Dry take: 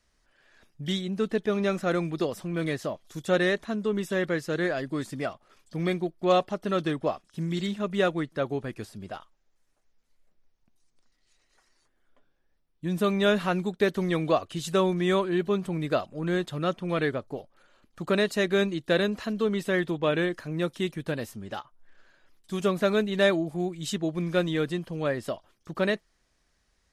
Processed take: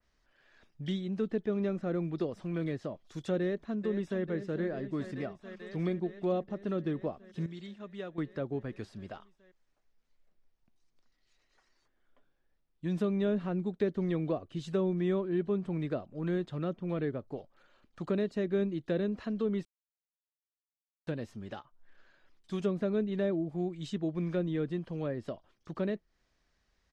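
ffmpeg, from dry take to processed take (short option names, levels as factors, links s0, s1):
-filter_complex "[0:a]asplit=2[s0][s1];[s1]afade=t=in:st=3.39:d=0.01,afade=t=out:st=4.23:d=0.01,aecho=0:1:440|880|1320|1760|2200|2640|3080|3520|3960|4400|4840|5280:0.237137|0.18971|0.151768|0.121414|0.0971315|0.0777052|0.0621641|0.0497313|0.039785|0.031828|0.0254624|0.0203699[s2];[s0][s2]amix=inputs=2:normalize=0,asplit=5[s3][s4][s5][s6][s7];[s3]atrim=end=7.462[s8];[s4]atrim=start=7.458:end=8.182,asetpts=PTS-STARTPTS,volume=0.266[s9];[s5]atrim=start=8.178:end=19.65,asetpts=PTS-STARTPTS,afade=t=out:st=11.468:d=0.004:c=hsin[s10];[s6]atrim=start=19.65:end=21.07,asetpts=PTS-STARTPTS,volume=0[s11];[s7]atrim=start=21.07,asetpts=PTS-STARTPTS,afade=t=in:d=0.004:c=hsin[s12];[s8][s9]acrossfade=d=0.004:c1=hsin:c2=hsin[s13];[s10][s11][s12]concat=n=3:v=0:a=1[s14];[s13][s14]acrossfade=d=0.004:c1=hsin:c2=hsin,lowpass=5400,acrossover=split=490[s15][s16];[s16]acompressor=threshold=0.00891:ratio=4[s17];[s15][s17]amix=inputs=2:normalize=0,adynamicequalizer=threshold=0.00355:dfrequency=2600:dqfactor=0.7:tfrequency=2600:tqfactor=0.7:attack=5:release=100:ratio=0.375:range=3:mode=cutabove:tftype=highshelf,volume=0.668"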